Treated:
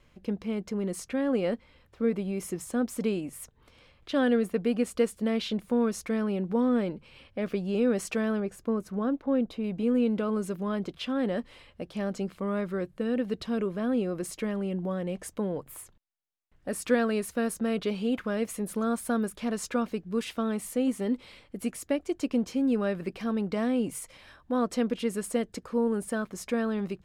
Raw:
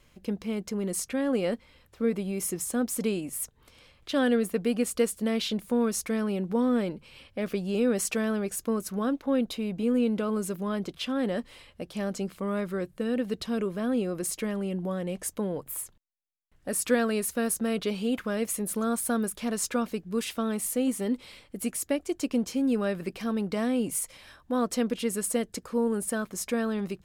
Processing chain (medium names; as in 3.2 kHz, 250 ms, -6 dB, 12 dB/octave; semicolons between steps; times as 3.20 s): low-pass 3 kHz 6 dB/octave, from 8.40 s 1.2 kHz, from 9.64 s 3.4 kHz